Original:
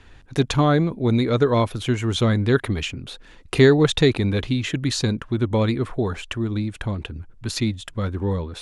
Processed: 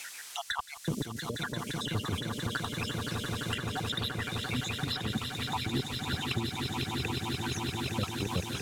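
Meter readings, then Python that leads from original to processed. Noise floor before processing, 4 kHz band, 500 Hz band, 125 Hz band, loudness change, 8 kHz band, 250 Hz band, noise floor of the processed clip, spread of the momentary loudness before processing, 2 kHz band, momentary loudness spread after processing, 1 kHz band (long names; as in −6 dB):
−47 dBFS, −4.5 dB, −19.0 dB, −13.0 dB, −12.0 dB, −5.0 dB, −14.0 dB, −45 dBFS, 12 LU, −7.0 dB, 3 LU, −7.5 dB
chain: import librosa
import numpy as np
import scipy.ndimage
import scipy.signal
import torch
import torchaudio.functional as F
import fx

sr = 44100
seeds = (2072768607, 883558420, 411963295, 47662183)

p1 = fx.spec_dropout(x, sr, seeds[0], share_pct=79)
p2 = scipy.signal.sosfilt(scipy.signal.butter(2, 84.0, 'highpass', fs=sr, output='sos'), p1)
p3 = fx.dmg_noise_colour(p2, sr, seeds[1], colour='violet', level_db=-43.0)
p4 = scipy.signal.sosfilt(scipy.signal.butter(2, 7400.0, 'lowpass', fs=sr, output='sos'), p3)
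p5 = fx.over_compress(p4, sr, threshold_db=-27.0, ratio=-0.5)
p6 = np.clip(p5, -10.0 ** (-19.0 / 20.0), 10.0 ** (-19.0 / 20.0))
p7 = fx.low_shelf(p6, sr, hz=250.0, db=4.0)
p8 = p7 + fx.echo_swell(p7, sr, ms=172, loudest=8, wet_db=-10.0, dry=0)
p9 = fx.band_squash(p8, sr, depth_pct=70)
y = F.gain(torch.from_numpy(p9), -6.0).numpy()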